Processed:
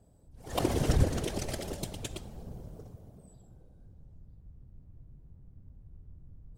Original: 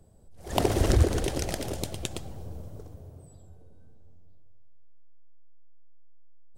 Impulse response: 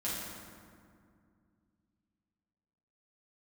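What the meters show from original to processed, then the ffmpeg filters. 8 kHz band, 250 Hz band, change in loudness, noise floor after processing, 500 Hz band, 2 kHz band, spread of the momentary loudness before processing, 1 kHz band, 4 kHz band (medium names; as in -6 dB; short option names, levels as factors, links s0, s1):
-4.5 dB, -3.0 dB, -5.0 dB, -57 dBFS, -5.0 dB, -5.0 dB, 21 LU, -5.0 dB, -4.5 dB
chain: -filter_complex "[0:a]asplit=2[s0][s1];[1:a]atrim=start_sample=2205,atrim=end_sample=4410[s2];[s1][s2]afir=irnorm=-1:irlink=0,volume=0.112[s3];[s0][s3]amix=inputs=2:normalize=0,afftfilt=real='hypot(re,im)*cos(2*PI*random(0))':imag='hypot(re,im)*sin(2*PI*random(1))':win_size=512:overlap=0.75,volume=1.12"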